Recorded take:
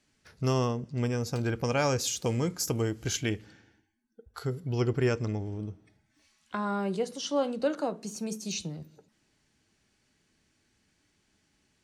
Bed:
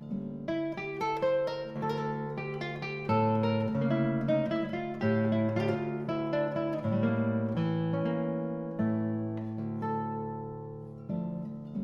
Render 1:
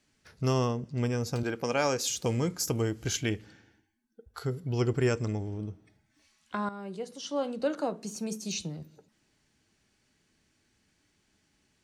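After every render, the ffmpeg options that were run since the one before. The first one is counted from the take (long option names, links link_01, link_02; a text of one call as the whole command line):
ffmpeg -i in.wav -filter_complex "[0:a]asettb=1/sr,asplit=3[link_01][link_02][link_03];[link_01]atrim=end=1.434[link_04];[link_02]atrim=start=1.43:end=2.1,asetpts=PTS-STARTPTS,afade=type=in:duration=0.004:curve=qsin,afade=type=out:start_time=0.666:duration=0.004:curve=qsin,highpass=210[link_05];[link_03]atrim=start=2.096[link_06];[link_04][link_05]acrossfade=duration=0.004:curve1=hsin:curve2=qsin[link_07];[link_07][link_06]acrossfade=duration=0.004:curve1=qsin:curve2=hsin,asettb=1/sr,asplit=3[link_08][link_09][link_10];[link_08]atrim=end=4.754[link_11];[link_09]atrim=start=4.75:end=5.46,asetpts=PTS-STARTPTS,afade=type=in:duration=0.004:curve=qsin,afade=type=out:start_time=0.706:duration=0.004:curve=qsin,equalizer=frequency=8100:width=3.3:gain=11[link_12];[link_10]atrim=start=5.456[link_13];[link_11][link_12]acrossfade=duration=0.004:curve1=hsin:curve2=qsin[link_14];[link_14][link_13]acrossfade=duration=0.004:curve1=qsin:curve2=hsin,asplit=2[link_15][link_16];[link_15]atrim=end=6.69,asetpts=PTS-STARTPTS,afade=type=out:start_time=6.686:duration=0.004:curve=hsin:silence=0.237137[link_17];[link_16]atrim=start=6.69,asetpts=PTS-STARTPTS,afade=type=in:duration=1.18:silence=0.237137[link_18];[link_17][link_18]concat=n=2:v=0:a=1" out.wav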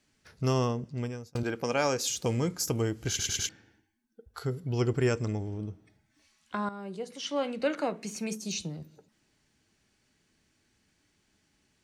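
ffmpeg -i in.wav -filter_complex "[0:a]asettb=1/sr,asplit=3[link_01][link_02][link_03];[link_01]atrim=end=7.104[link_04];[link_02]atrim=start=7.1:end=8.35,asetpts=PTS-STARTPTS,afade=type=in:duration=0.004:curve=qsin,afade=type=out:start_time=1.246:duration=0.004:curve=qsin,equalizer=frequency=2200:width_type=o:width=0.72:gain=14[link_05];[link_03]atrim=start=8.346[link_06];[link_04][link_05]acrossfade=duration=0.004:curve1=hsin:curve2=qsin[link_07];[link_07][link_06]acrossfade=duration=0.004:curve1=qsin:curve2=hsin,asplit=6[link_08][link_09][link_10][link_11][link_12][link_13];[link_08]atrim=end=1.35,asetpts=PTS-STARTPTS,afade=type=out:start_time=0.82:duration=0.53[link_14];[link_09]atrim=start=1.35:end=3.192,asetpts=PTS-STARTPTS,afade=type=in:duration=0.004:curve=hsin[link_15];[link_10]atrim=start=3.088:end=3.192[link_16];[link_11]atrim=start=3.088:end=3.192[link_17];[link_12]atrim=start=3.088:end=3.192[link_18];[link_13]atrim=start=3.488[link_19];[link_14][link_15]concat=n=2:v=0:a=1[link_20];[link_20][link_16]acrossfade=duration=0.004:curve1=hsin:curve2=hsin[link_21];[link_21][link_17]acrossfade=duration=0.004:curve1=hsin:curve2=hsin[link_22];[link_22][link_18]acrossfade=duration=0.004:curve1=hsin:curve2=hsin[link_23];[link_23][link_19]acrossfade=duration=0.004:curve1=hsin:curve2=hsin" out.wav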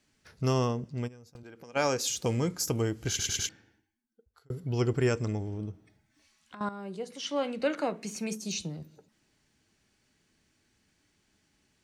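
ffmpeg -i in.wav -filter_complex "[0:a]asplit=3[link_01][link_02][link_03];[link_01]afade=type=out:start_time=1.07:duration=0.02[link_04];[link_02]acompressor=threshold=-48dB:ratio=4:attack=3.2:release=140:knee=1:detection=peak,afade=type=in:start_time=1.07:duration=0.02,afade=type=out:start_time=1.75:duration=0.02[link_05];[link_03]afade=type=in:start_time=1.75:duration=0.02[link_06];[link_04][link_05][link_06]amix=inputs=3:normalize=0,asettb=1/sr,asplit=3[link_07][link_08][link_09];[link_07]atrim=end=5.714[link_10];[link_08]atrim=start=5.71:end=6.61,asetpts=PTS-STARTPTS,afade=type=in:duration=0.004:curve=qsin,afade=type=out:start_time=0.896:duration=0.004:curve=qsin,acompressor=threshold=-43dB:ratio=6:attack=3.2:release=140:knee=1:detection=peak[link_11];[link_09]atrim=start=6.606[link_12];[link_10][link_11]acrossfade=duration=0.004:curve1=hsin:curve2=qsin[link_13];[link_13][link_12]acrossfade=duration=0.004:curve1=qsin:curve2=hsin,asplit=2[link_14][link_15];[link_14]atrim=end=4.5,asetpts=PTS-STARTPTS,afade=type=out:start_time=3.4:duration=1.1[link_16];[link_15]atrim=start=4.5,asetpts=PTS-STARTPTS,afade=type=in:duration=0.004:curve=hsin[link_17];[link_16][link_17]concat=n=2:v=0:a=1" out.wav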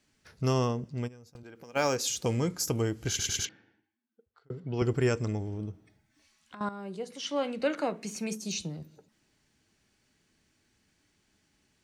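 ffmpeg -i in.wav -filter_complex "[0:a]asettb=1/sr,asplit=3[link_01][link_02][link_03];[link_01]atrim=end=1.554[link_04];[link_02]atrim=start=1.55:end=1.96,asetpts=PTS-STARTPTS,afade=type=in:duration=0.004:curve=qsin,afade=type=out:start_time=0.406:duration=0.004:curve=qsin,acrusher=bits=8:mode=log:mix=0:aa=0.000001[link_05];[link_03]atrim=start=1.956[link_06];[link_04][link_05]acrossfade=duration=0.004:curve1=hsin:curve2=qsin[link_07];[link_07][link_06]acrossfade=duration=0.004:curve1=qsin:curve2=hsin,asettb=1/sr,asplit=3[link_08][link_09][link_10];[link_08]atrim=end=3.454[link_11];[link_09]atrim=start=3.45:end=4.82,asetpts=PTS-STARTPTS,afade=type=in:duration=0.004:curve=qsin,afade=type=out:start_time=1.366:duration=0.004:curve=qsin,highpass=140,lowpass=3400[link_12];[link_10]atrim=start=4.816[link_13];[link_11][link_12]acrossfade=duration=0.004:curve1=hsin:curve2=qsin[link_14];[link_14][link_13]acrossfade=duration=0.004:curve1=qsin:curve2=hsin" out.wav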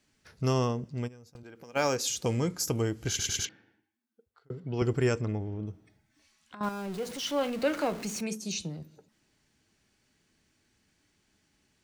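ffmpeg -i in.wav -filter_complex "[0:a]asettb=1/sr,asplit=3[link_01][link_02][link_03];[link_01]atrim=end=5.214[link_04];[link_02]atrim=start=5.21:end=5.67,asetpts=PTS-STARTPTS,afade=type=in:duration=0.004:curve=qsin,afade=type=out:start_time=0.456:duration=0.004:curve=qsin,lowpass=3100[link_05];[link_03]atrim=start=5.666[link_06];[link_04][link_05]acrossfade=duration=0.004:curve1=hsin:curve2=qsin[link_07];[link_07][link_06]acrossfade=duration=0.004:curve1=qsin:curve2=hsin,asettb=1/sr,asplit=3[link_08][link_09][link_10];[link_08]atrim=end=6.634[link_11];[link_09]atrim=start=6.63:end=8.21,asetpts=PTS-STARTPTS,afade=type=in:duration=0.004:curve=qsin,afade=type=out:start_time=1.576:duration=0.004:curve=qsin,aeval=exprs='val(0)+0.5*0.0126*sgn(val(0))':channel_layout=same[link_12];[link_10]atrim=start=8.206[link_13];[link_11][link_12]acrossfade=duration=0.004:curve1=hsin:curve2=qsin[link_14];[link_14][link_13]acrossfade=duration=0.004:curve1=qsin:curve2=hsin" out.wav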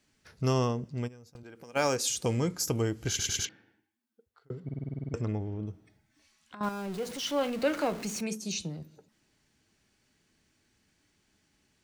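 ffmpeg -i in.wav -filter_complex "[0:a]asettb=1/sr,asplit=3[link_01][link_02][link_03];[link_01]atrim=end=1.504[link_04];[link_02]atrim=start=1.5:end=2.26,asetpts=PTS-STARTPTS,afade=type=in:duration=0.004:curve=qsin,afade=type=out:start_time=0.756:duration=0.004:curve=qsin,equalizer=frequency=9000:width_type=o:width=0.22:gain=10.5[link_05];[link_03]atrim=start=2.256[link_06];[link_04][link_05]acrossfade=duration=0.004:curve1=hsin:curve2=qsin[link_07];[link_07][link_06]acrossfade=duration=0.004:curve1=qsin:curve2=hsin,asplit=11[link_08][link_09][link_10][link_11][link_12][link_13][link_14][link_15][link_16][link_17][link_18];[link_08]atrim=end=4.692[link_19];[link_09]atrim=start=4.638:end=4.692[link_20];[link_10]atrim=start=4.638:end=4.692[link_21];[link_11]atrim=start=4.638:end=4.692[link_22];[link_12]atrim=start=4.638:end=4.692[link_23];[link_13]atrim=start=4.638:end=4.692[link_24];[link_14]atrim=start=4.638:end=4.692[link_25];[link_15]atrim=start=4.638:end=4.692[link_26];[link_16]atrim=start=4.638:end=4.692[link_27];[link_17]atrim=start=4.638:end=4.692[link_28];[link_18]atrim=start=5.138[link_29];[link_19][link_20]acrossfade=duration=0.004:curve1=hsin:curve2=hsin[link_30];[link_30][link_21]acrossfade=duration=0.004:curve1=hsin:curve2=hsin[link_31];[link_31][link_22]acrossfade=duration=0.004:curve1=hsin:curve2=hsin[link_32];[link_32][link_23]acrossfade=duration=0.004:curve1=hsin:curve2=hsin[link_33];[link_33][link_24]acrossfade=duration=0.004:curve1=hsin:curve2=hsin[link_34];[link_34][link_25]acrossfade=duration=0.004:curve1=hsin:curve2=hsin[link_35];[link_35][link_26]acrossfade=duration=0.004:curve1=hsin:curve2=hsin[link_36];[link_36][link_27]acrossfade=duration=0.004:curve1=hsin:curve2=hsin[link_37];[link_37][link_28]acrossfade=duration=0.004:curve1=hsin:curve2=hsin[link_38];[link_38][link_29]acrossfade=duration=0.004:curve1=hsin:curve2=hsin" out.wav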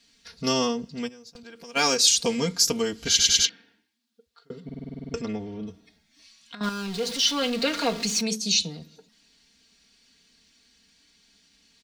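ffmpeg -i in.wav -af "equalizer=frequency=4200:width_type=o:width=1.4:gain=14,aecho=1:1:4.3:0.97" out.wav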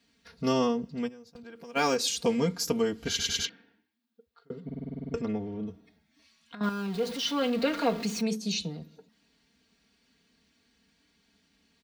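ffmpeg -i in.wav -af "highpass=54,equalizer=frequency=6100:width=0.44:gain=-12.5" out.wav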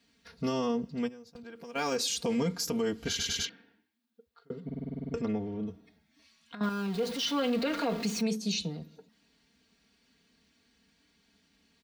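ffmpeg -i in.wav -af "alimiter=limit=-22dB:level=0:latency=1:release=27" out.wav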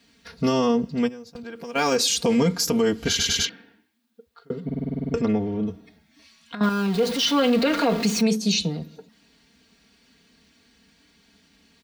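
ffmpeg -i in.wav -af "volume=9.5dB" out.wav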